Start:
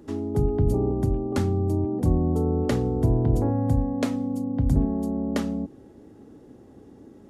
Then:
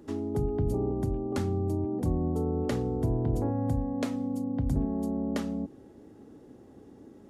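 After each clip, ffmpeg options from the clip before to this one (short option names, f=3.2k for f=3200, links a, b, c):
-filter_complex "[0:a]lowshelf=f=150:g=-3,asplit=2[a][b];[b]alimiter=limit=-21dB:level=0:latency=1:release=311,volume=-0.5dB[c];[a][c]amix=inputs=2:normalize=0,volume=-8dB"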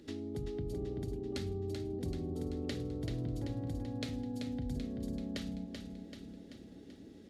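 -filter_complex "[0:a]equalizer=f=1k:t=o:w=1:g=-11,equalizer=f=2k:t=o:w=1:g=5,equalizer=f=4k:t=o:w=1:g=12,acompressor=threshold=-37dB:ratio=2,asplit=2[a][b];[b]aecho=0:1:385|770|1155|1540|1925|2310|2695:0.501|0.286|0.163|0.0928|0.0529|0.0302|0.0172[c];[a][c]amix=inputs=2:normalize=0,volume=-4dB"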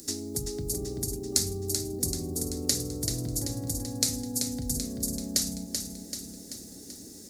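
-af "aexciter=amount=14.8:drive=7.5:freq=4.9k,volume=4dB"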